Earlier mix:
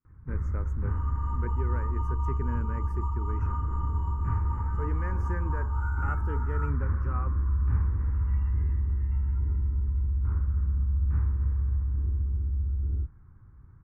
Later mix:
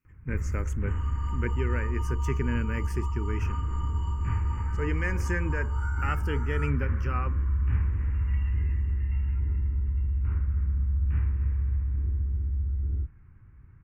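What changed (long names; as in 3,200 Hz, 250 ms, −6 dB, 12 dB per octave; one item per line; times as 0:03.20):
speech +6.0 dB
master: add high shelf with overshoot 1,800 Hz +13.5 dB, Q 1.5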